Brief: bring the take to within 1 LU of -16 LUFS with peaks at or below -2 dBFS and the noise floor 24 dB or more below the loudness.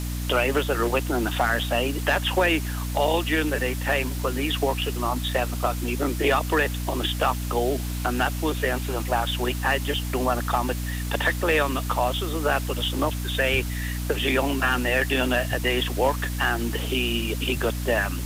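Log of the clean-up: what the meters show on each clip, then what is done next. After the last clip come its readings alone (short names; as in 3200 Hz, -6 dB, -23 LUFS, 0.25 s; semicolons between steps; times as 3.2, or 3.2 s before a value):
hum 60 Hz; harmonics up to 300 Hz; hum level -27 dBFS; noise floor -29 dBFS; noise floor target -49 dBFS; loudness -24.5 LUFS; peak -10.0 dBFS; loudness target -16.0 LUFS
-> notches 60/120/180/240/300 Hz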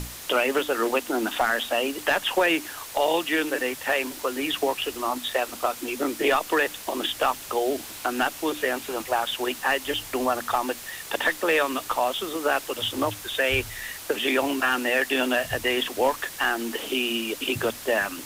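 hum none; noise floor -40 dBFS; noise floor target -50 dBFS
-> noise print and reduce 10 dB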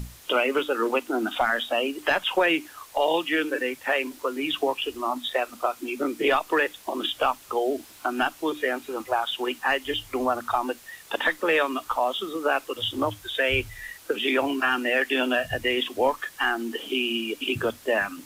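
noise floor -49 dBFS; noise floor target -50 dBFS
-> noise print and reduce 6 dB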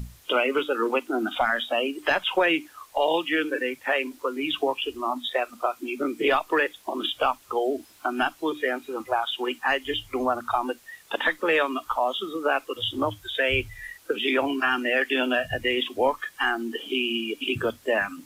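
noise floor -54 dBFS; loudness -26.0 LUFS; peak -10.5 dBFS; loudness target -16.0 LUFS
-> gain +10 dB; limiter -2 dBFS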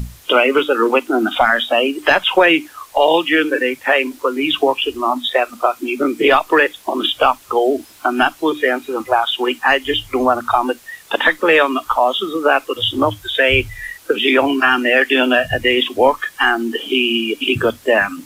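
loudness -16.0 LUFS; peak -2.0 dBFS; noise floor -44 dBFS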